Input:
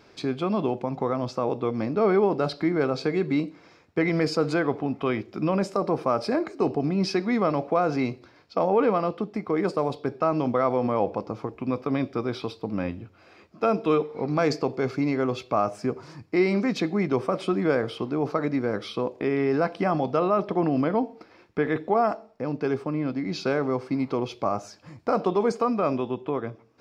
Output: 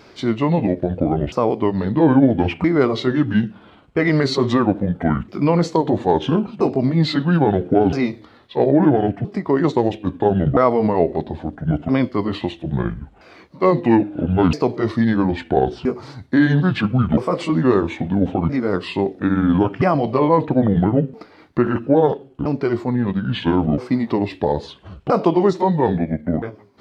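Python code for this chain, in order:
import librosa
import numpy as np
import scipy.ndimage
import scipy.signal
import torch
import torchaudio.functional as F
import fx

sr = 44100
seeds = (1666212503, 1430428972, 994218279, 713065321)

y = fx.pitch_ramps(x, sr, semitones=-10.0, every_ms=1321)
y = y * 10.0 ** (8.5 / 20.0)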